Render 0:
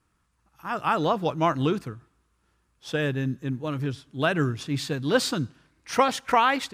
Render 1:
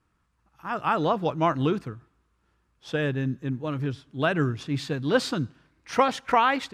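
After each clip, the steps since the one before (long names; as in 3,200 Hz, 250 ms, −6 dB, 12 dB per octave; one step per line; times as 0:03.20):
low-pass filter 3,700 Hz 6 dB per octave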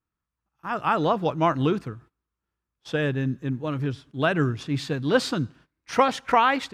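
noise gate −50 dBFS, range −17 dB
level +1.5 dB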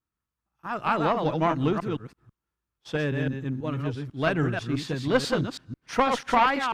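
delay that plays each chunk backwards 164 ms, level −5 dB
harmonic generator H 2 −9 dB, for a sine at −5.5 dBFS
level −2.5 dB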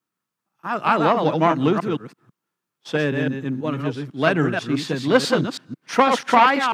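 high-pass filter 150 Hz 24 dB per octave
level +6.5 dB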